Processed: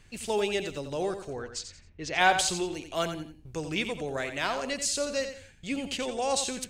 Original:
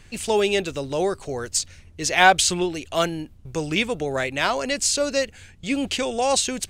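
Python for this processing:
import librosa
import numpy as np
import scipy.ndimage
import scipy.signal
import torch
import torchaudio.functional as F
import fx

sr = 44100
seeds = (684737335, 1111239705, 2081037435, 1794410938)

y = fx.env_lowpass(x, sr, base_hz=1800.0, full_db=-13.5, at=(1.3, 2.37))
y = fx.echo_feedback(y, sr, ms=88, feedback_pct=29, wet_db=-9)
y = F.gain(torch.from_numpy(y), -8.0).numpy()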